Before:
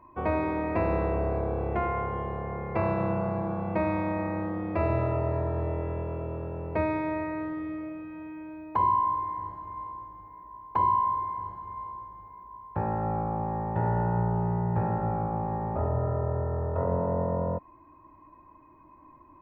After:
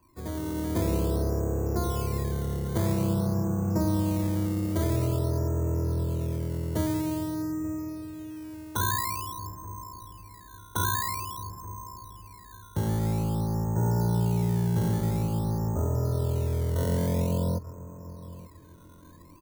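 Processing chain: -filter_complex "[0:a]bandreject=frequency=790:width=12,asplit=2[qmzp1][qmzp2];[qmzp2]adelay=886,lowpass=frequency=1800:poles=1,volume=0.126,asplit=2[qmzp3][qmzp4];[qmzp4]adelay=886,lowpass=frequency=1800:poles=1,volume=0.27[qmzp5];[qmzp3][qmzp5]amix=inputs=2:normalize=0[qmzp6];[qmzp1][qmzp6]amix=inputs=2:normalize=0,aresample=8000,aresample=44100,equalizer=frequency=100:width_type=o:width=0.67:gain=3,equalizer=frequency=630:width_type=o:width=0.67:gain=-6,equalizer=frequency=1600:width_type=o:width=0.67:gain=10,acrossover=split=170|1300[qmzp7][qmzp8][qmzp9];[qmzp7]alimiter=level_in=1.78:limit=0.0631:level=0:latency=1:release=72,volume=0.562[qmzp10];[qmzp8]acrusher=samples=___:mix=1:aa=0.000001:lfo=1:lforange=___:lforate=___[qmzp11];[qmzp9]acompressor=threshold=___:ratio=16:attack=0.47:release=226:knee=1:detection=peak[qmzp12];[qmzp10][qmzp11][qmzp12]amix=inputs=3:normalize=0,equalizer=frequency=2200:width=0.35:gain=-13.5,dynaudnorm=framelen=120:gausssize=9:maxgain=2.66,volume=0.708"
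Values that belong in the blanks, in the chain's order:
12, 12, 0.49, 0.00316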